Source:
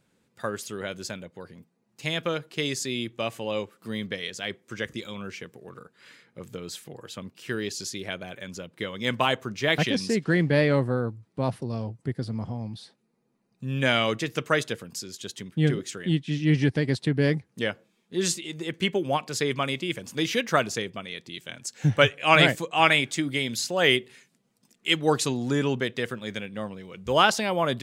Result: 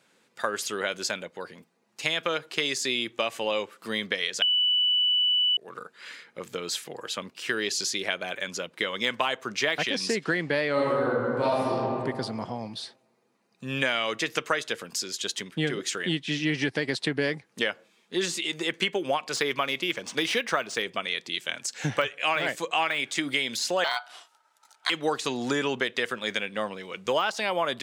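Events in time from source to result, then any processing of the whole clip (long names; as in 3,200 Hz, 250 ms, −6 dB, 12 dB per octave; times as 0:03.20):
0:04.42–0:05.57: beep over 2,970 Hz −13.5 dBFS
0:10.73–0:11.70: thrown reverb, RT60 1.5 s, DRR −11 dB
0:19.36–0:20.83: linearly interpolated sample-rate reduction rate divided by 3×
0:23.84–0:24.90: ring modulation 1,100 Hz
whole clip: de-essing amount 65%; meter weighting curve A; downward compressor 6 to 1, threshold −31 dBFS; level +8 dB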